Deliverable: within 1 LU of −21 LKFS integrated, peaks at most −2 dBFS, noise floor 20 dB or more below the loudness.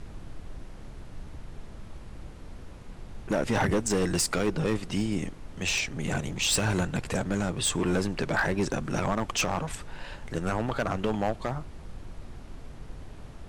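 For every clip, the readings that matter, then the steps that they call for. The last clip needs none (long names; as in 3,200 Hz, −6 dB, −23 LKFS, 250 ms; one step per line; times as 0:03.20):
share of clipped samples 1.4%; peaks flattened at −20.0 dBFS; background noise floor −44 dBFS; target noise floor −49 dBFS; integrated loudness −28.5 LKFS; sample peak −20.0 dBFS; target loudness −21.0 LKFS
→ clipped peaks rebuilt −20 dBFS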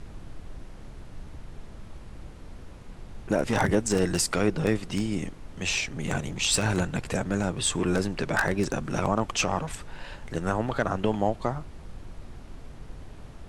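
share of clipped samples 0.0%; background noise floor −44 dBFS; target noise floor −48 dBFS
→ noise reduction from a noise print 6 dB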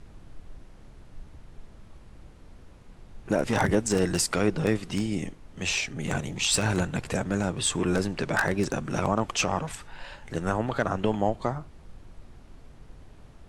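background noise floor −50 dBFS; integrated loudness −27.5 LKFS; sample peak −11.0 dBFS; target loudness −21.0 LKFS
→ level +6.5 dB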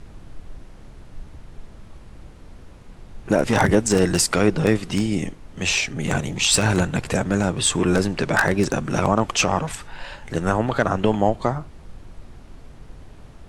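integrated loudness −21.0 LKFS; sample peak −4.5 dBFS; background noise floor −44 dBFS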